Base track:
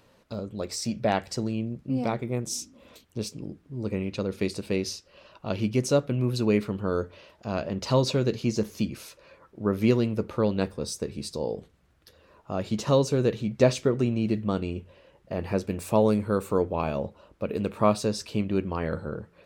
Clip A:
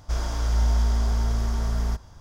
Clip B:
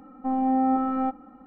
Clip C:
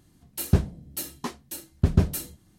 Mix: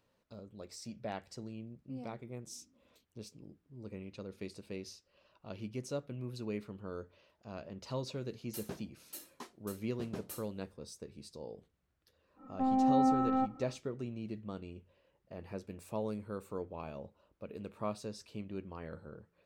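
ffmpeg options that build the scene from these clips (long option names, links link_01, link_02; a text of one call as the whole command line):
ffmpeg -i bed.wav -i cue0.wav -i cue1.wav -i cue2.wav -filter_complex "[0:a]volume=-16dB[link_01];[3:a]highpass=290,atrim=end=2.58,asetpts=PTS-STARTPTS,volume=-14dB,afade=type=in:duration=0.004:curve=hsin,afade=type=out:start_time=2.576:duration=0.004:curve=hsin,adelay=8160[link_02];[2:a]atrim=end=1.46,asetpts=PTS-STARTPTS,volume=-5dB,afade=type=in:duration=0.1,afade=type=out:start_time=1.36:duration=0.1,adelay=12350[link_03];[link_01][link_02][link_03]amix=inputs=3:normalize=0" out.wav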